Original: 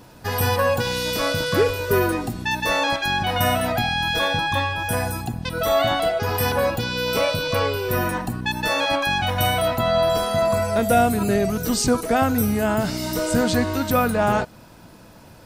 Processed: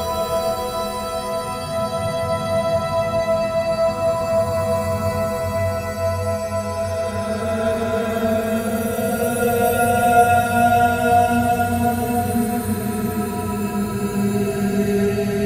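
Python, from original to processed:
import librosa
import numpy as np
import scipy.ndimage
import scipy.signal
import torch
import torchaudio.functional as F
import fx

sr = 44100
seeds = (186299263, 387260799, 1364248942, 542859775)

y = fx.paulstretch(x, sr, seeds[0], factor=13.0, window_s=0.25, from_s=10.17)
y = fx.notch_comb(y, sr, f0_hz=300.0)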